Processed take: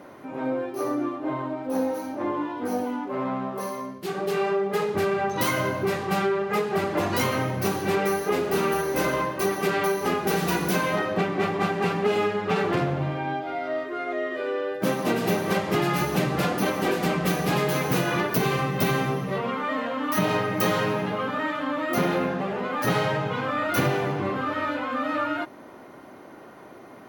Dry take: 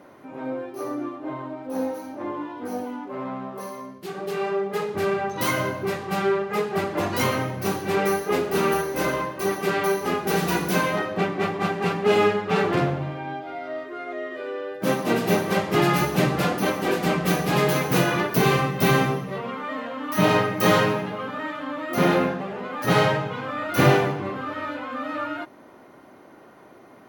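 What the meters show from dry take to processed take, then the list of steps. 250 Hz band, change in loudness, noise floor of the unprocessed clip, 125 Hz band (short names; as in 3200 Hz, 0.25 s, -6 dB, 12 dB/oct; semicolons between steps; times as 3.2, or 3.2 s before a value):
-1.0 dB, -1.5 dB, -49 dBFS, -2.5 dB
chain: compressor, threshold -24 dBFS, peak gain reduction 12.5 dB; gain +3.5 dB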